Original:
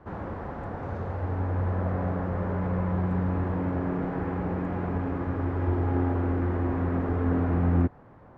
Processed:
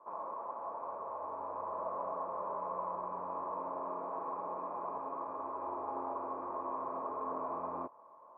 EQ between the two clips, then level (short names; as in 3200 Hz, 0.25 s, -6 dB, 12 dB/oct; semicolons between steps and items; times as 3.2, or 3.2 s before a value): vocal tract filter a; HPF 390 Hz 12 dB/oct; Butterworth band-stop 750 Hz, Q 3.8; +12.0 dB